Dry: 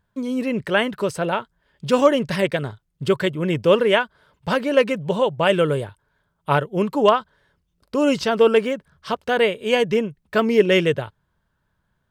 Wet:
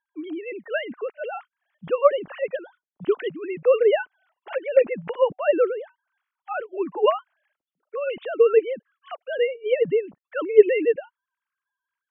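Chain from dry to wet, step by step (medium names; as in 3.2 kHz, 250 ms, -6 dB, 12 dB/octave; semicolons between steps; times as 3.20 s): formants replaced by sine waves; dynamic bell 280 Hz, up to +4 dB, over -33 dBFS, Q 2.6; trim -3.5 dB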